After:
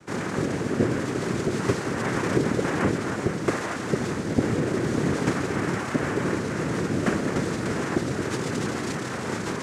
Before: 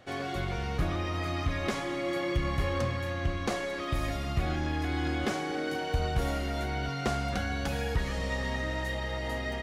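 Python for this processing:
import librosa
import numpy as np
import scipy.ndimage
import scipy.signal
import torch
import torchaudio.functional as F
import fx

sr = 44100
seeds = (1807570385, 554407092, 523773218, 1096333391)

y = fx.peak_eq(x, sr, hz=160.0, db=12.0, octaves=2.7)
y = fx.noise_vocoder(y, sr, seeds[0], bands=3)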